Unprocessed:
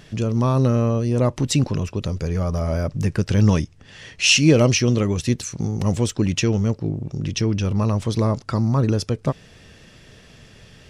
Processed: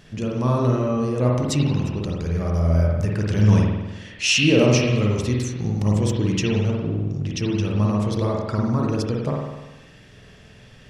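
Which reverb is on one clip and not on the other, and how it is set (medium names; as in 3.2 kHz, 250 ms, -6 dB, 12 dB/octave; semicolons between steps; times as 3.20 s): spring tank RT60 1.1 s, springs 48 ms, chirp 45 ms, DRR -2 dB; trim -4.5 dB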